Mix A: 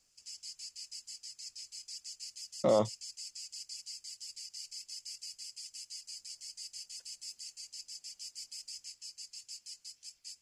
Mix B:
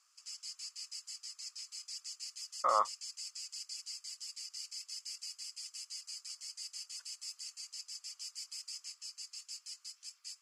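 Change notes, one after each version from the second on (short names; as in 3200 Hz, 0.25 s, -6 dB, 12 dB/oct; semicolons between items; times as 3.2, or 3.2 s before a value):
speech: add polynomial smoothing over 41 samples; master: add resonant high-pass 1200 Hz, resonance Q 6.4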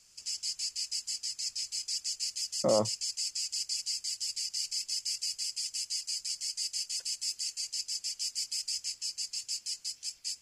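background +11.0 dB; master: remove resonant high-pass 1200 Hz, resonance Q 6.4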